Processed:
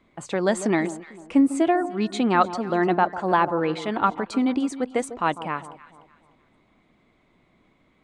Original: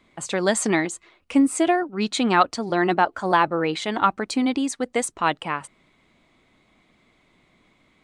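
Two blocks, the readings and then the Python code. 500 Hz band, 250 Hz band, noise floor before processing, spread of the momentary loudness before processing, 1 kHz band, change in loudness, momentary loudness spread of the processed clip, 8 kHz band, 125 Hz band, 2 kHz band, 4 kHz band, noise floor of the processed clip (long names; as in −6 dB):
0.0 dB, 0.0 dB, −63 dBFS, 8 LU, −1.5 dB, −1.0 dB, 8 LU, −9.0 dB, +0.5 dB, −3.5 dB, −7.0 dB, −63 dBFS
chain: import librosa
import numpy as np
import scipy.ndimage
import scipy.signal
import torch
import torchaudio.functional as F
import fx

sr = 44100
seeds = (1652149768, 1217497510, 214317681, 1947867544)

p1 = fx.high_shelf(x, sr, hz=2300.0, db=-10.0)
y = p1 + fx.echo_alternate(p1, sr, ms=149, hz=1100.0, feedback_pct=56, wet_db=-12.5, dry=0)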